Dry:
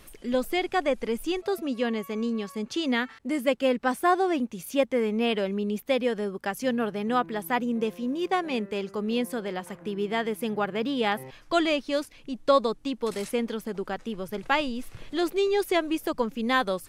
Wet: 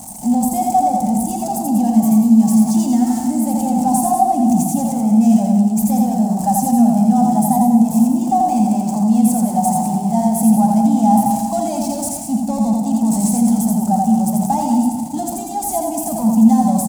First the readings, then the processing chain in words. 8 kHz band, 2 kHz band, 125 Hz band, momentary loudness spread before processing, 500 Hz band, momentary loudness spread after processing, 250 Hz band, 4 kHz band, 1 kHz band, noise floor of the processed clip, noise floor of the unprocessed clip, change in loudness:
+21.5 dB, under -15 dB, +20.0 dB, 7 LU, 0.0 dB, 8 LU, +16.5 dB, no reading, +13.0 dB, -24 dBFS, -52 dBFS, +12.5 dB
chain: jump at every zero crossing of -29 dBFS; treble shelf 4.9 kHz +6 dB; overdrive pedal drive 25 dB, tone 1.1 kHz, clips at -7.5 dBFS; high-pass 47 Hz; gate -25 dBFS, range -7 dB; on a send: loudspeakers at several distances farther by 29 m -3 dB, 65 m -9 dB; on the sum: FDN reverb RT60 2.1 s, low-frequency decay 1.25×, high-frequency decay 0.75×, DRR 7 dB; in parallel at +1 dB: peak limiter -10 dBFS, peak gain reduction 7 dB; on the sum: FFT filter 130 Hz 0 dB, 220 Hz +12 dB, 430 Hz -29 dB, 780 Hz +9 dB, 1.2 kHz -23 dB, 1.7 kHz -26 dB, 3.5 kHz -18 dB, 7.8 kHz +14 dB, 13 kHz +8 dB; trim -7 dB

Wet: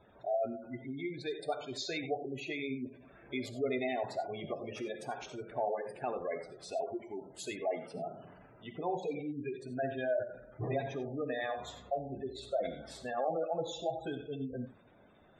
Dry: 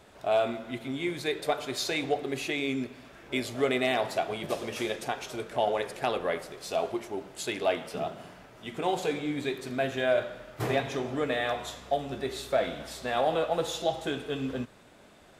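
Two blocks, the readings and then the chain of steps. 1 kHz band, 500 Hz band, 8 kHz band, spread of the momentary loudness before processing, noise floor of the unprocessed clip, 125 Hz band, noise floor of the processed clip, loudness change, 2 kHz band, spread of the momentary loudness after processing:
-7.5 dB, -6.5 dB, -10.5 dB, 9 LU, -55 dBFS, -5.5 dB, -61 dBFS, -7.0 dB, -10.0 dB, 8 LU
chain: spectral gate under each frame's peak -15 dB strong; peaking EQ 120 Hz +2.5 dB 2 oct; gated-style reverb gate 110 ms rising, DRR 9 dB; trim -7 dB

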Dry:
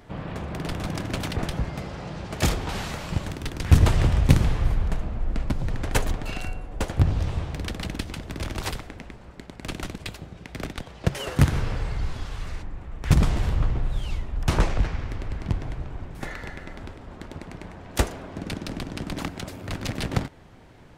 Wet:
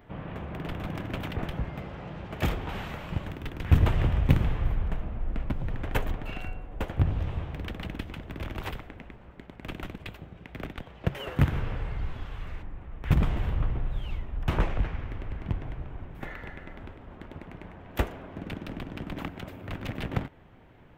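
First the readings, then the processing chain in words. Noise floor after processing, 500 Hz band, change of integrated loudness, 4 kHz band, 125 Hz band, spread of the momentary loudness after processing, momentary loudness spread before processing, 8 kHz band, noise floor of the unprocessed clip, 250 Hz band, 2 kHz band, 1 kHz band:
-50 dBFS, -4.5 dB, -4.5 dB, -8.5 dB, -4.5 dB, 17 LU, 17 LU, under -15 dB, -46 dBFS, -4.5 dB, -4.5 dB, -4.5 dB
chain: high-order bell 6.8 kHz -13.5 dB; trim -4.5 dB

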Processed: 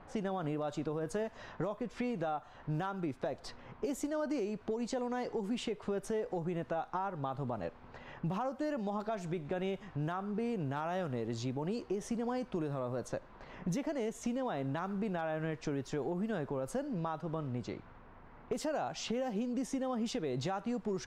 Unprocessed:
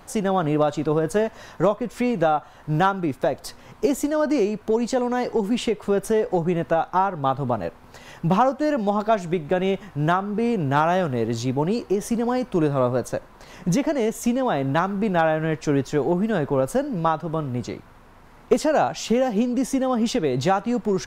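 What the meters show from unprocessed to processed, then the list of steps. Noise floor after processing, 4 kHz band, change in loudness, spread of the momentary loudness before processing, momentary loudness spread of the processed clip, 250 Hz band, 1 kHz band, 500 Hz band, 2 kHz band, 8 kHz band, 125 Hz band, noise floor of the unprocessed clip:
-55 dBFS, -12.5 dB, -14.5 dB, 6 LU, 5 LU, -13.5 dB, -16.5 dB, -15.0 dB, -15.0 dB, -13.5 dB, -13.0 dB, -48 dBFS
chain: level-controlled noise filter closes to 2 kHz, open at -17 dBFS; peak limiter -14 dBFS, peak gain reduction 6 dB; compression 2.5:1, threshold -30 dBFS, peak gain reduction 8.5 dB; trim -6 dB

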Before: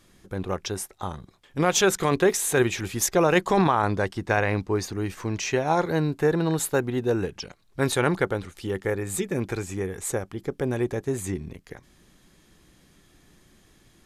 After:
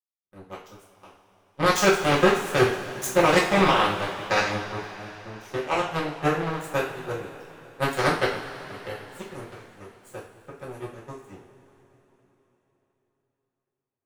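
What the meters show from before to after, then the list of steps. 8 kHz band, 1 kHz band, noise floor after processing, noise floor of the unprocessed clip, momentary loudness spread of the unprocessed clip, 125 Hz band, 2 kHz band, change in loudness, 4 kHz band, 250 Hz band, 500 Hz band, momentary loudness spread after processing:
-7.0 dB, +2.0 dB, -85 dBFS, -59 dBFS, 13 LU, -4.5 dB, +2.5 dB, +2.0 dB, +3.0 dB, -3.0 dB, -1.0 dB, 23 LU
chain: power-law waveshaper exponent 3; two-slope reverb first 0.42 s, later 4 s, from -18 dB, DRR -7.5 dB

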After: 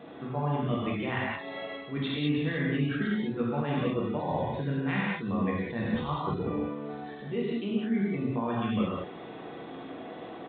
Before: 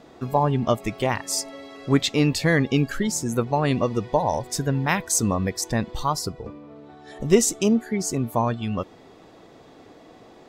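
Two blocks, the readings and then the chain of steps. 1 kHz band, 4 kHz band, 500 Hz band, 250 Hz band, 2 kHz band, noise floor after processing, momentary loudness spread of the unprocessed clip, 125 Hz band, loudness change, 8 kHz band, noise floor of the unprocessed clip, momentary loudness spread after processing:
-8.5 dB, -10.0 dB, -8.5 dB, -5.0 dB, -5.5 dB, -43 dBFS, 9 LU, -6.5 dB, -7.5 dB, under -40 dB, -49 dBFS, 13 LU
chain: high-pass 120 Hz 12 dB/octave; dynamic bell 780 Hz, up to -6 dB, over -35 dBFS, Q 1.3; reverse; compression 12:1, threshold -32 dBFS, peak gain reduction 20.5 dB; reverse; gated-style reverb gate 230 ms flat, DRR -6 dB; resampled via 8 kHz

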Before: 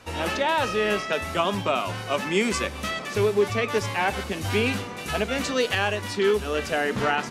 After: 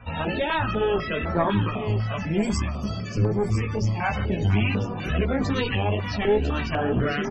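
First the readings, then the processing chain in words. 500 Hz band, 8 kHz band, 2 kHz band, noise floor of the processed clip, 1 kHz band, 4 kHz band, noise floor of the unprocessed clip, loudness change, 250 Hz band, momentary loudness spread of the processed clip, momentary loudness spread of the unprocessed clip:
-2.0 dB, -8.5 dB, -4.0 dB, -31 dBFS, -2.5 dB, -5.0 dB, -35 dBFS, 0.0 dB, +4.0 dB, 4 LU, 5 LU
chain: chorus 2.3 Hz, delay 16.5 ms, depth 2.9 ms; bass shelf 260 Hz +10.5 dB; in parallel at -1 dB: peak limiter -16 dBFS, peak gain reduction 7 dB; on the sum: time-frequency box 1.70–4.03 s, 230–4300 Hz -7 dB; one-sided clip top -26 dBFS; loudest bins only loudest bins 64; on a send: delay 1000 ms -9.5 dB; on the sum: step-sequenced notch 4 Hz 360–2800 Hz

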